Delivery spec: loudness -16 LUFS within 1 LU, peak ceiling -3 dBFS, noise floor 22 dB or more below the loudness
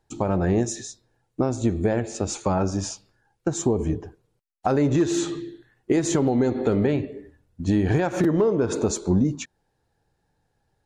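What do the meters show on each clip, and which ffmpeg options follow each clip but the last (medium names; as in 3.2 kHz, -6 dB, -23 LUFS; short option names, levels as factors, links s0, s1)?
loudness -24.0 LUFS; peak level -8.0 dBFS; loudness target -16.0 LUFS
-> -af "volume=2.51,alimiter=limit=0.708:level=0:latency=1"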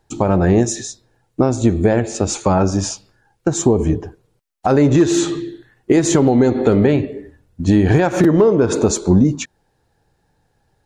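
loudness -16.0 LUFS; peak level -3.0 dBFS; noise floor -65 dBFS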